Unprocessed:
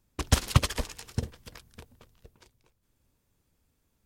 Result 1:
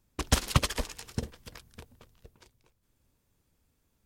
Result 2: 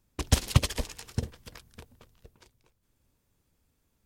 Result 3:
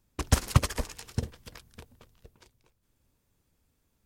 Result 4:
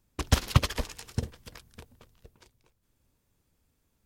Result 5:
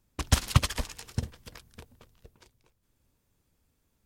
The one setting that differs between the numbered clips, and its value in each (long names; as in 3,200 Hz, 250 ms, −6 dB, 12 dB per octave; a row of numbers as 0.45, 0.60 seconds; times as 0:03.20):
dynamic equaliser, frequency: 100, 1,300, 3,400, 8,600, 420 Hertz